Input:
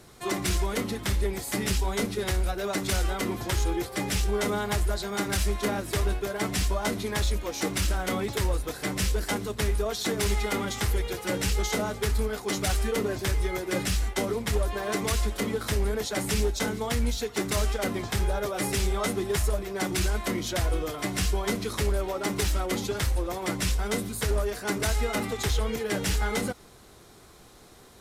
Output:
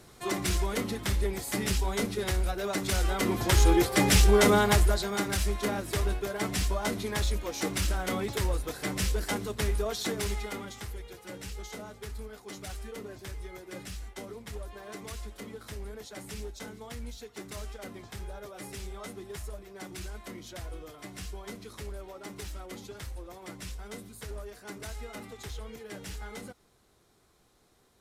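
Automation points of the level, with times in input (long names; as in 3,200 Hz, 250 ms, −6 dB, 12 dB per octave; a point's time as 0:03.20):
0:02.92 −2 dB
0:03.73 +6.5 dB
0:04.59 +6.5 dB
0:05.32 −2.5 dB
0:09.99 −2.5 dB
0:10.94 −14 dB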